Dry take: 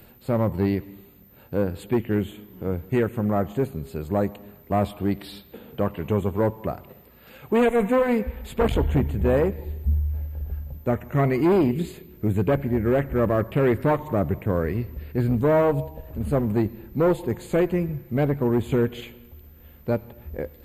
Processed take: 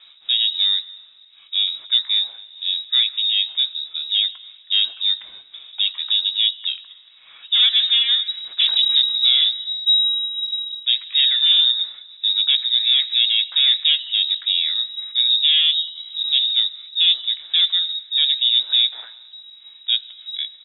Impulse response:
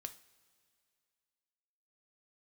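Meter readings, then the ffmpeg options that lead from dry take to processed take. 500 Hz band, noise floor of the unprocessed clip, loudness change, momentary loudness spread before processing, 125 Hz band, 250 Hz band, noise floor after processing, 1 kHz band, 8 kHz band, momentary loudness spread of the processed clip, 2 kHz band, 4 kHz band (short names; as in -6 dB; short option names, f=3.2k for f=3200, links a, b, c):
under -40 dB, -50 dBFS, +7.5 dB, 12 LU, under -40 dB, under -40 dB, -48 dBFS, under -20 dB, n/a, 10 LU, +3.0 dB, +34.5 dB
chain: -filter_complex "[0:a]acrossover=split=2900[a][b];[b]acompressor=threshold=-56dB:ratio=4:attack=1:release=60[c];[a][c]amix=inputs=2:normalize=0,lowpass=f=3.3k:t=q:w=0.5098,lowpass=f=3.3k:t=q:w=0.6013,lowpass=f=3.3k:t=q:w=0.9,lowpass=f=3.3k:t=q:w=2.563,afreqshift=-3900,aemphasis=mode=production:type=50fm,asplit=2[d][e];[e]adelay=17,volume=-14dB[f];[d][f]amix=inputs=2:normalize=0"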